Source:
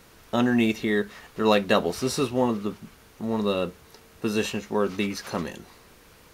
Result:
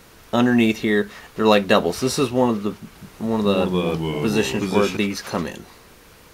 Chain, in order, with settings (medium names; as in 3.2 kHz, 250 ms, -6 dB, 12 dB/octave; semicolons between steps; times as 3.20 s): 2.76–4.97 s: ever faster or slower copies 191 ms, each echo -2 st, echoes 3; trim +5 dB